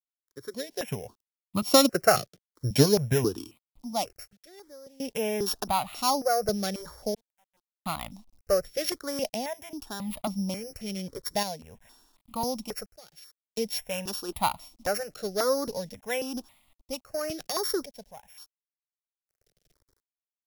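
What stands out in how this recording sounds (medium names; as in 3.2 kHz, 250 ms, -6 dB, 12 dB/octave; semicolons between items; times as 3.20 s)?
a buzz of ramps at a fixed pitch in blocks of 8 samples; random-step tremolo 1.4 Hz, depth 100%; a quantiser's noise floor 12-bit, dither none; notches that jump at a steady rate 3.7 Hz 260–1600 Hz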